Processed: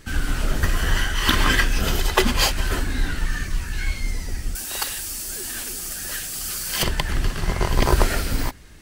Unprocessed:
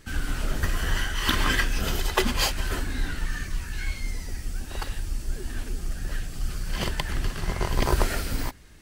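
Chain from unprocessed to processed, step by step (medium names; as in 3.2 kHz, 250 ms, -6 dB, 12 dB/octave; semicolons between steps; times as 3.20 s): 4.55–6.83 s: RIAA curve recording; trim +5 dB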